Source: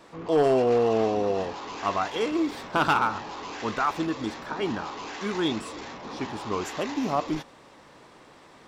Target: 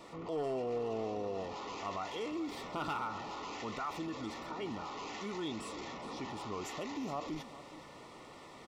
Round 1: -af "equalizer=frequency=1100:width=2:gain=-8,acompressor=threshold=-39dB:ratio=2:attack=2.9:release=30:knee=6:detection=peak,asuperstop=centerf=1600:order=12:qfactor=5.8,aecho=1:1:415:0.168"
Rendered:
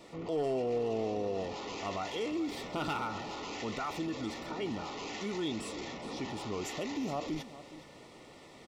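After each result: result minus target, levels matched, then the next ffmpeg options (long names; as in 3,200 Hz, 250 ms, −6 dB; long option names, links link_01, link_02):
downward compressor: peak gain reduction −4.5 dB; 1,000 Hz band −2.5 dB
-af "equalizer=frequency=1100:width=2:gain=-8,acompressor=threshold=-47.5dB:ratio=2:attack=2.9:release=30:knee=6:detection=peak,asuperstop=centerf=1600:order=12:qfactor=5.8,aecho=1:1:415:0.168"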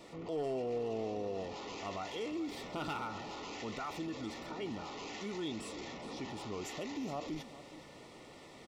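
1,000 Hz band −2.5 dB
-af "acompressor=threshold=-47.5dB:ratio=2:attack=2.9:release=30:knee=6:detection=peak,asuperstop=centerf=1600:order=12:qfactor=5.8,aecho=1:1:415:0.168"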